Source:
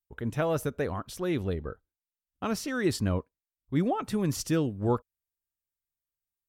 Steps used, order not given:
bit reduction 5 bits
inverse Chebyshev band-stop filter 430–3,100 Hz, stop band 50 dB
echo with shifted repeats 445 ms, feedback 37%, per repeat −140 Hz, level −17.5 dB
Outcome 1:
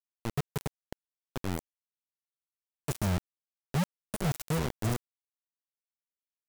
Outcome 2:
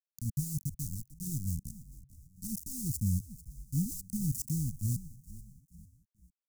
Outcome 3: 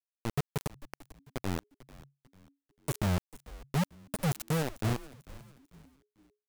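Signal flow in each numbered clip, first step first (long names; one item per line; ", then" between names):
echo with shifted repeats, then inverse Chebyshev band-stop filter, then bit reduction
bit reduction, then echo with shifted repeats, then inverse Chebyshev band-stop filter
inverse Chebyshev band-stop filter, then bit reduction, then echo with shifted repeats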